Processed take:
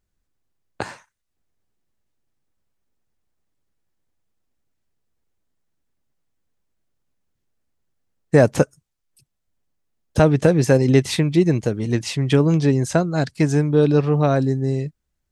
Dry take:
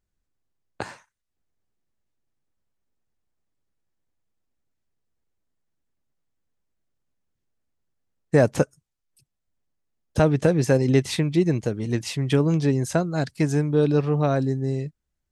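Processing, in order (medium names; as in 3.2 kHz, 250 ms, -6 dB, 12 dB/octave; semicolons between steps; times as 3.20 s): 11.89–14.13 s: low-pass 10 kHz 12 dB/octave; trim +4 dB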